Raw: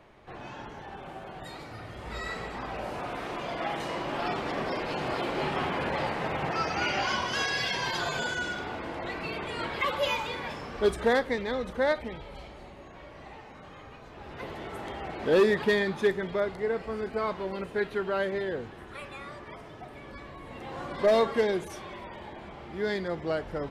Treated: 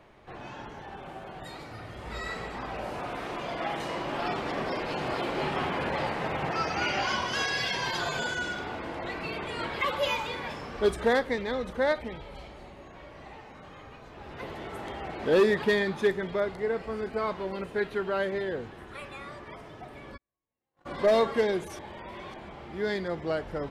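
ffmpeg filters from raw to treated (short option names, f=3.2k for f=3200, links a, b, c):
-filter_complex "[0:a]asplit=3[a][b][c];[a]afade=t=out:st=20.16:d=0.02[d];[b]agate=range=-49dB:threshold=-34dB:ratio=16:release=100:detection=peak,afade=t=in:st=20.16:d=0.02,afade=t=out:st=20.85:d=0.02[e];[c]afade=t=in:st=20.85:d=0.02[f];[d][e][f]amix=inputs=3:normalize=0,asplit=3[g][h][i];[g]atrim=end=21.792[j];[h]atrim=start=21.788:end=22.342,asetpts=PTS-STARTPTS,areverse[k];[i]atrim=start=22.338[l];[j][k]acrossfade=d=0.004:c1=hsin:c2=hsin[m];[m][l]acrossfade=d=0.004:c1=hsin:c2=hsin"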